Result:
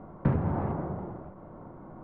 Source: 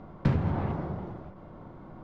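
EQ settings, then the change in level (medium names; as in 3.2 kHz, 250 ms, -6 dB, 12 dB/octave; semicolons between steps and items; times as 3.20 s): low-pass 1.4 kHz 12 dB/octave; distance through air 53 m; bass shelf 170 Hz -5.5 dB; +2.5 dB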